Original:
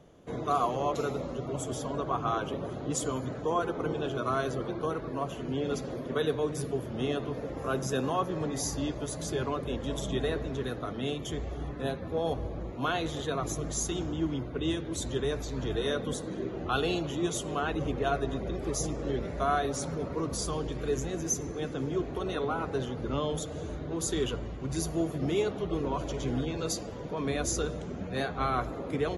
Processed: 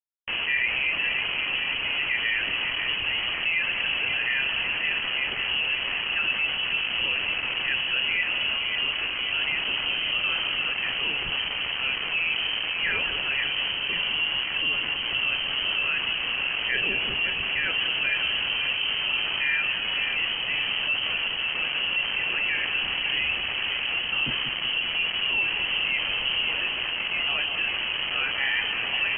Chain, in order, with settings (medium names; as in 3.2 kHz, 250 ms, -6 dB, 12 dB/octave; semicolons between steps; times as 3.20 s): hum notches 60/120/180/240 Hz; word length cut 6-bit, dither none; flange 1.4 Hz, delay 3.8 ms, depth 9.9 ms, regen -60%; two-band feedback delay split 1.5 kHz, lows 543 ms, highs 188 ms, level -9 dB; frequency inversion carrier 3.1 kHz; level flattener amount 50%; trim +5 dB